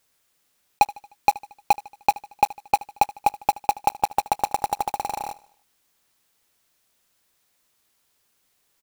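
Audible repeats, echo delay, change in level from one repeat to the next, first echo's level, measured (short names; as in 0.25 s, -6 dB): 3, 76 ms, -6.0 dB, -20.0 dB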